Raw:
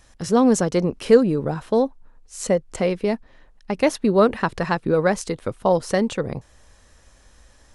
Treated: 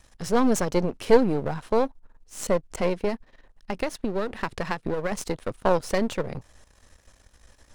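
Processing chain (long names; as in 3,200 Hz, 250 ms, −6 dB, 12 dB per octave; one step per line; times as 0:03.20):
gain on one half-wave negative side −12 dB
0:03.08–0:05.12: downward compressor 6 to 1, threshold −23 dBFS, peak gain reduction 10 dB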